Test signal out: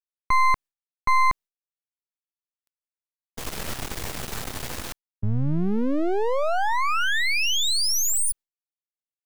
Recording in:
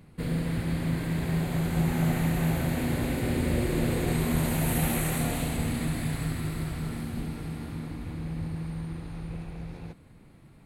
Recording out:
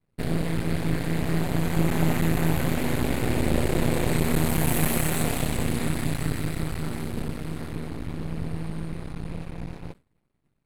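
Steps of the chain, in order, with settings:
downward expander −38 dBFS
half-wave rectification
level +7 dB

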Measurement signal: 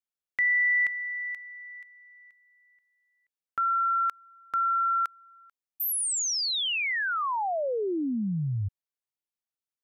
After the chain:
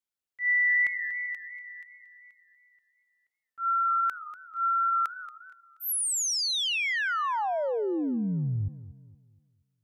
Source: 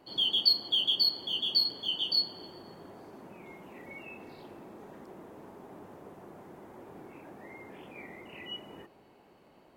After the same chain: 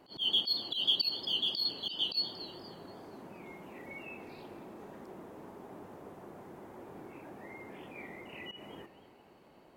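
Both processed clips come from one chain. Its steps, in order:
volume swells 109 ms
feedback echo with a swinging delay time 236 ms, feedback 38%, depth 181 cents, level −15.5 dB

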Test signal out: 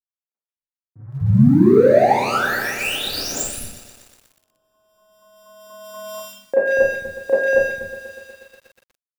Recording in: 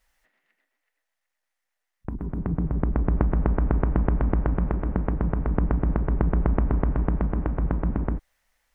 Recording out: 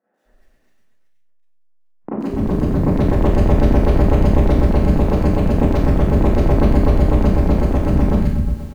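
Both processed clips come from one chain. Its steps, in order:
running median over 41 samples
in parallel at +1 dB: downward compressor 6 to 1, threshold −32 dBFS
on the sum: three-band delay without the direct sound mids, highs, lows 140/250 ms, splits 200/1,800 Hz
four-comb reverb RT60 0.51 s, combs from 29 ms, DRR −9.5 dB
feedback echo at a low word length 121 ms, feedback 80%, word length 7 bits, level −14.5 dB
level +2.5 dB

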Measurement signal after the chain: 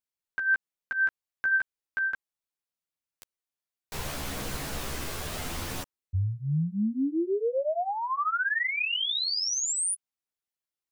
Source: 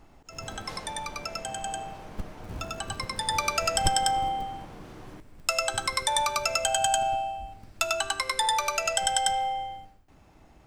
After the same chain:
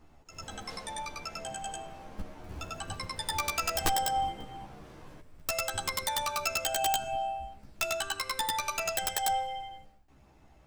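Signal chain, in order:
wrap-around overflow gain 13 dB
multi-voice chorus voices 2, 0.34 Hz, delay 13 ms, depth 2.1 ms
level −1.5 dB

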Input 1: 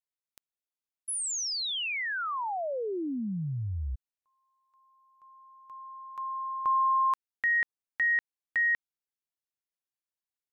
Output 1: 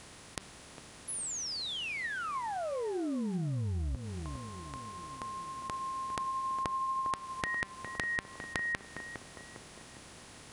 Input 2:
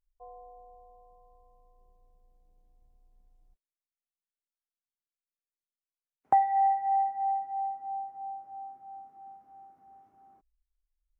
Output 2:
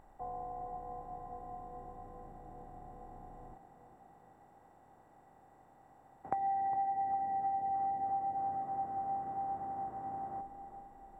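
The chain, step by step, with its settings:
compressor on every frequency bin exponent 0.4
low-shelf EQ 350 Hz +10 dB
hum removal 195.2 Hz, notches 28
on a send: tape delay 406 ms, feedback 69%, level −8 dB, low-pass 1,000 Hz
on the sum: downward compressor 6 to 1, threshold −25 dBFS
level −6.5 dB

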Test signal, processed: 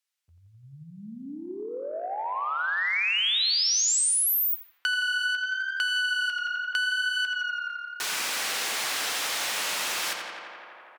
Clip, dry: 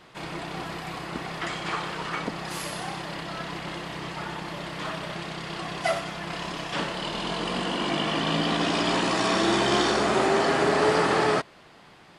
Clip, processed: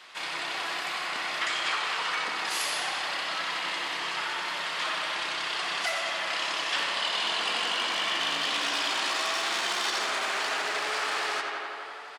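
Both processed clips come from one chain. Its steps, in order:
wavefolder on the positive side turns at −21.5 dBFS
double-tracking delay 14 ms −13 dB
brickwall limiter −18.5 dBFS
meter weighting curve A
tape delay 84 ms, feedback 90%, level −5.5 dB, low-pass 4,000 Hz
downward compressor 10 to 1, threshold −27 dBFS
high-pass filter 100 Hz 6 dB per octave
tilt shelving filter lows −6.5 dB
hum removal 343.2 Hz, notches 19

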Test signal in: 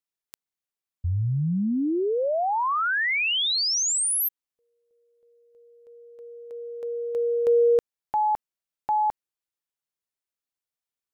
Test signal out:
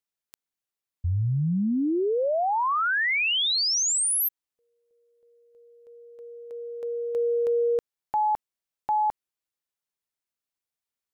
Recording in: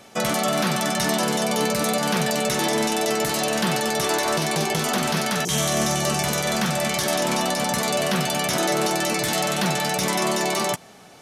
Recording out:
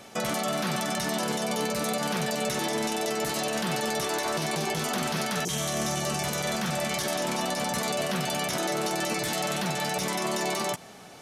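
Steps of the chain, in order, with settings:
brickwall limiter −20 dBFS

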